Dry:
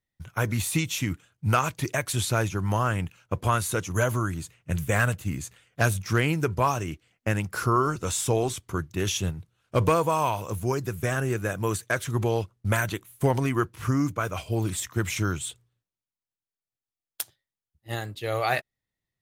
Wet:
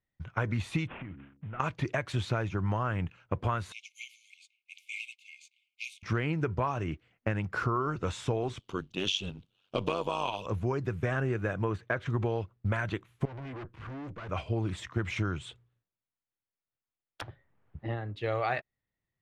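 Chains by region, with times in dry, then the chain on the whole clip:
0.87–1.60 s: CVSD coder 16 kbps + de-hum 68.99 Hz, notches 7 + compression 8:1, threshold -38 dBFS
3.72–6.03 s: companding laws mixed up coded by A + brick-wall FIR high-pass 2.1 kHz
8.59–10.46 s: high-pass 180 Hz + resonant high shelf 2.4 kHz +8 dB, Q 3 + AM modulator 95 Hz, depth 65%
11.64–12.06 s: treble shelf 4.2 kHz -10.5 dB + decimation joined by straight lines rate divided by 2×
13.25–14.29 s: valve stage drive 39 dB, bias 0.6 + treble shelf 5.3 kHz -7.5 dB + band-stop 1.3 kHz, Q 21
17.21–18.16 s: tape spacing loss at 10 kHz 29 dB + three bands compressed up and down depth 100%
whole clip: low-pass 2.7 kHz 12 dB/octave; compression, threshold -26 dBFS

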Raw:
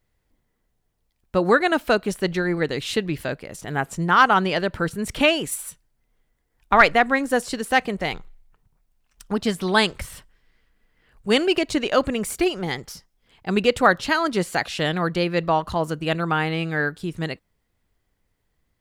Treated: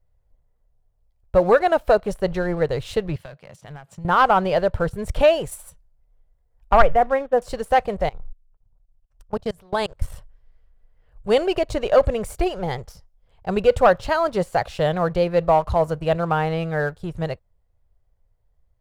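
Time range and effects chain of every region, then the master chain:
3.16–4.05 s: high-pass 130 Hz 24 dB/octave + compression 10:1, threshold -30 dBFS + FFT filter 160 Hz 0 dB, 450 Hz -10 dB, 3.2 kHz +3 dB, 11 kHz -6 dB
6.82–7.42 s: de-esser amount 85% + brick-wall FIR low-pass 3.8 kHz + three bands expanded up and down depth 100%
8.09–10.02 s: treble shelf 4.9 kHz +2.5 dB + level held to a coarse grid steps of 22 dB + tape noise reduction on one side only decoder only
whole clip: FFT filter 110 Hz 0 dB, 280 Hz -16 dB, 560 Hz +2 dB, 2 kHz -13 dB; waveshaping leveller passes 1; bass shelf 69 Hz +11 dB; trim +2.5 dB

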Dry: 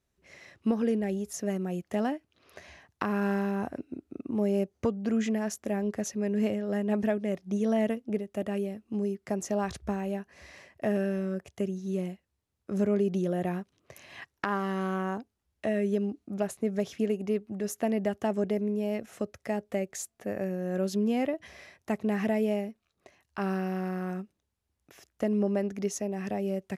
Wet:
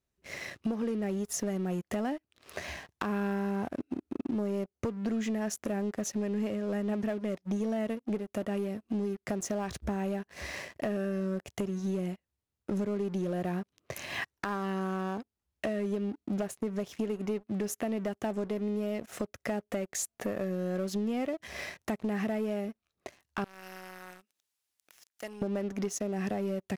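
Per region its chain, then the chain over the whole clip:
23.44–25.42 s: differentiator + upward compressor, threshold -54 dBFS + low-pass 3.8 kHz 6 dB/octave
whole clip: compression 6:1, threshold -41 dBFS; waveshaping leveller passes 3

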